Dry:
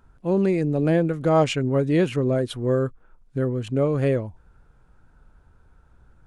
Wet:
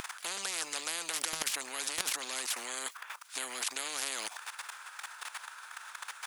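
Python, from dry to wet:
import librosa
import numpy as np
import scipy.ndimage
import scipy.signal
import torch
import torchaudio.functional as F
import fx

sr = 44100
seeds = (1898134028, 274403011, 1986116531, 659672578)

p1 = fx.level_steps(x, sr, step_db=17)
p2 = fx.high_shelf(p1, sr, hz=3200.0, db=5.0)
p3 = 10.0 ** (-25.0 / 20.0) * np.tanh(p2 / 10.0 ** (-25.0 / 20.0))
p4 = p2 + (p3 * librosa.db_to_amplitude(-10.0))
p5 = scipy.signal.sosfilt(scipy.signal.butter(4, 1200.0, 'highpass', fs=sr, output='sos'), p4)
p6 = fx.over_compress(p5, sr, threshold_db=-34.0, ratio=-0.5)
p7 = fx.spectral_comp(p6, sr, ratio=10.0)
y = p7 * librosa.db_to_amplitude(4.0)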